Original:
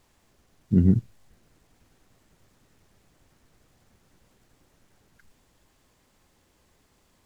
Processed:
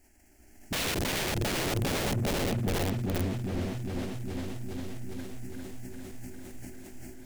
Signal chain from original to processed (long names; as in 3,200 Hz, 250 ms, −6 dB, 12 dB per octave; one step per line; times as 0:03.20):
feedback delay that plays each chunk backwards 199 ms, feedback 84%, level −2.5 dB
automatic gain control gain up to 6 dB
phaser with its sweep stopped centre 740 Hz, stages 8
wrap-around overflow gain 26.5 dB
parametric band 1,100 Hz −10 dB 1.3 octaves
soft clipping −28.5 dBFS, distortion −18 dB
echo whose low-pass opens from repeat to repeat 406 ms, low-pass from 400 Hz, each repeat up 1 octave, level −6 dB
level that may fall only so fast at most 37 dB per second
level +5 dB